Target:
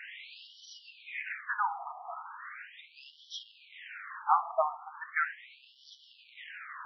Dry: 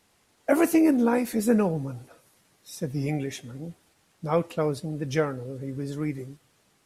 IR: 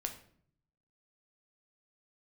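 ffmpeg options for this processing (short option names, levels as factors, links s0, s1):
-filter_complex "[0:a]aeval=exprs='val(0)+0.5*0.0178*sgn(val(0))':c=same,bass=f=250:g=-10,treble=f=4000:g=-10,asplit=2[s0][s1];[1:a]atrim=start_sample=2205,lowpass=2300[s2];[s1][s2]afir=irnorm=-1:irlink=0,volume=0.794[s3];[s0][s3]amix=inputs=2:normalize=0,afftfilt=real='re*between(b*sr/1024,910*pow(4200/910,0.5+0.5*sin(2*PI*0.38*pts/sr))/1.41,910*pow(4200/910,0.5+0.5*sin(2*PI*0.38*pts/sr))*1.41)':imag='im*between(b*sr/1024,910*pow(4200/910,0.5+0.5*sin(2*PI*0.38*pts/sr))/1.41,910*pow(4200/910,0.5+0.5*sin(2*PI*0.38*pts/sr))*1.41)':win_size=1024:overlap=0.75,volume=1.33"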